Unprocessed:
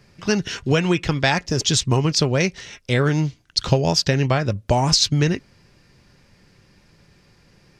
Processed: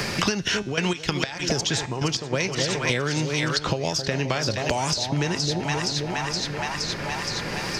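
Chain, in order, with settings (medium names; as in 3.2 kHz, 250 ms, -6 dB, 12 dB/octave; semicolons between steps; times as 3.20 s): bass shelf 310 Hz -8 dB; in parallel at -2 dB: peak limiter -11.5 dBFS, peak gain reduction 7.5 dB; on the sum: two-band feedback delay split 850 Hz, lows 264 ms, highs 469 ms, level -10.5 dB; compression, threshold -22 dBFS, peak gain reduction 12 dB; 0.54–2.32 s: trance gate "x..x.x.x.xxx." 97 bpm -12 dB; feedback comb 110 Hz, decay 0.64 s, harmonics all, mix 40%; three bands compressed up and down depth 100%; trim +5 dB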